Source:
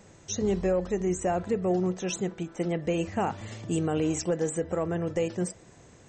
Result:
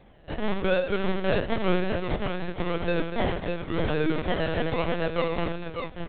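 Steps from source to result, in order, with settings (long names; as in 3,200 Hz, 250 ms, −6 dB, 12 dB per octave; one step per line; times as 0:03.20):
loose part that buzzes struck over −32 dBFS, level −40 dBFS
high-pass filter 260 Hz 6 dB per octave
sample-and-hold swept by an LFO 30×, swing 60% 0.95 Hz
multi-tap delay 80/244/585/608/890 ms −6.5/−10/−9.5/−6.5/−20 dB
linear-prediction vocoder at 8 kHz pitch kept
level +3 dB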